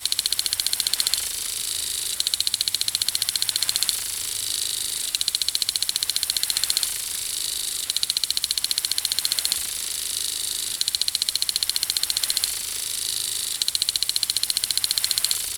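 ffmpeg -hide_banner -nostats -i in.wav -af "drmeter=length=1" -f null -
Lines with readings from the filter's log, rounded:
Channel 1: DR: 19.7
Overall DR: 19.7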